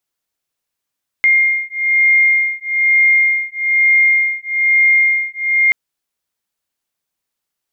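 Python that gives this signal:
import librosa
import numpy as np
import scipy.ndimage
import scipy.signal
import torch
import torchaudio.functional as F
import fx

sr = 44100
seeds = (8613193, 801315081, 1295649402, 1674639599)

y = fx.two_tone_beats(sr, length_s=4.48, hz=2120.0, beat_hz=1.1, level_db=-13.5)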